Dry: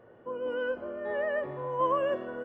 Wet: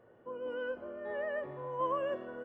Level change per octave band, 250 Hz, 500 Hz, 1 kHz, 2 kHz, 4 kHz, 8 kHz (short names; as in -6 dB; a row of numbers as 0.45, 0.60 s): -6.0 dB, -6.0 dB, -6.0 dB, -6.0 dB, n/a, n/a